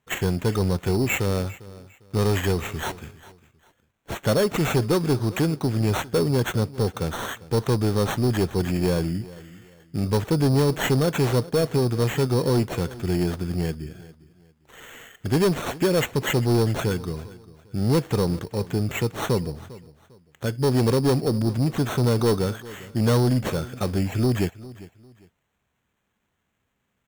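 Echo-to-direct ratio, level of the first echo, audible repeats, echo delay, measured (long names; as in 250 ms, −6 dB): −18.5 dB, −19.0 dB, 2, 401 ms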